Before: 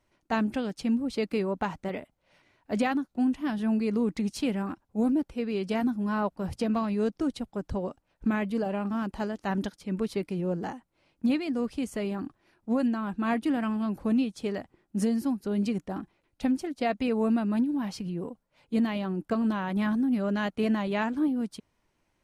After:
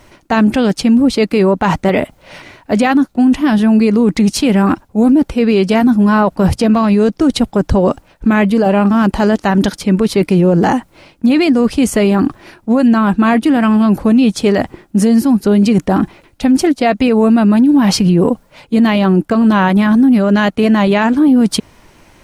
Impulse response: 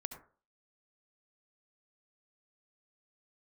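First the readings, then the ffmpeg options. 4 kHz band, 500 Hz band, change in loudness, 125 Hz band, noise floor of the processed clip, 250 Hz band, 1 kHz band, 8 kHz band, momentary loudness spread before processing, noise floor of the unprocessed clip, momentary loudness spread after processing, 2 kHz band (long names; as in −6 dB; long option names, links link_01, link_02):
+19.5 dB, +17.5 dB, +17.5 dB, +19.5 dB, −50 dBFS, +17.5 dB, +17.5 dB, +21.5 dB, 8 LU, −75 dBFS, 6 LU, +17.0 dB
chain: -af "areverse,acompressor=threshold=-36dB:ratio=6,areverse,alimiter=level_in=32dB:limit=-1dB:release=50:level=0:latency=1,volume=-3dB"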